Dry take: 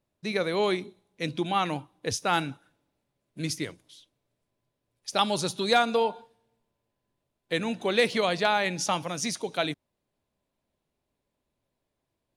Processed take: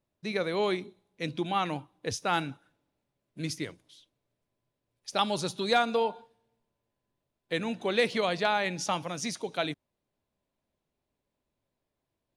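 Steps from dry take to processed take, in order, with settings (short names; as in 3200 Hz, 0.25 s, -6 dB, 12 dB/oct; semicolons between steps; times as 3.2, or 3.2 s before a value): high shelf 7700 Hz -6 dB; gain -2.5 dB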